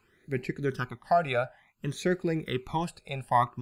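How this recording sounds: phasing stages 12, 0.57 Hz, lowest notch 320–1100 Hz

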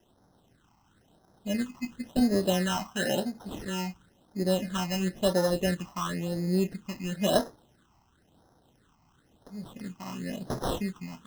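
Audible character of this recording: aliases and images of a low sample rate 2300 Hz, jitter 0%; phasing stages 8, 0.97 Hz, lowest notch 470–2800 Hz

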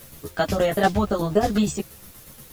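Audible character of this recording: tremolo saw down 8.4 Hz, depth 65%; a quantiser's noise floor 10-bit, dither triangular; a shimmering, thickened sound

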